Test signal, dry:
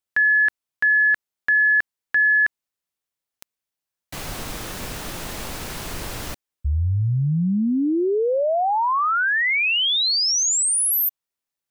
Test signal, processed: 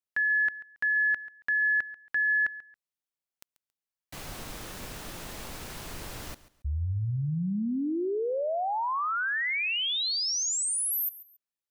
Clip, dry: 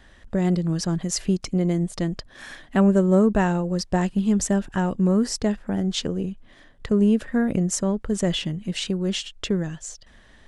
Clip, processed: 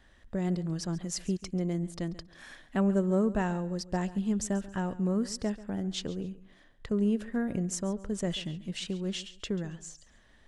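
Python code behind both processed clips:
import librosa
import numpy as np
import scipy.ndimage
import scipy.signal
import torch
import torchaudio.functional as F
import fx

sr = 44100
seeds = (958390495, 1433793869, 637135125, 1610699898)

y = fx.echo_feedback(x, sr, ms=138, feedback_pct=26, wet_db=-17.5)
y = y * 10.0 ** (-9.0 / 20.0)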